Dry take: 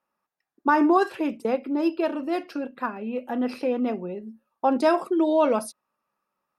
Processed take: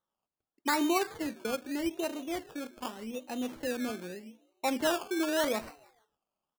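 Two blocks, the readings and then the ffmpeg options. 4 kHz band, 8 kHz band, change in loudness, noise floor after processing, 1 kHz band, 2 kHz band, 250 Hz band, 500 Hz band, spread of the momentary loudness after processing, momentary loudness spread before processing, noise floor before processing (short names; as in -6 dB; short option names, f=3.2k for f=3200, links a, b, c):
+4.5 dB, n/a, -8.5 dB, under -85 dBFS, -10.0 dB, -4.0 dB, -9.0 dB, -9.5 dB, 12 LU, 12 LU, -85 dBFS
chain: -filter_complex "[0:a]asplit=4[a][b][c][d];[b]adelay=154,afreqshift=72,volume=-22dB[e];[c]adelay=308,afreqshift=144,volume=-30.4dB[f];[d]adelay=462,afreqshift=216,volume=-38.8dB[g];[a][e][f][g]amix=inputs=4:normalize=0,acrusher=samples=18:mix=1:aa=0.000001:lfo=1:lforange=10.8:lforate=0.83,volume=-9dB"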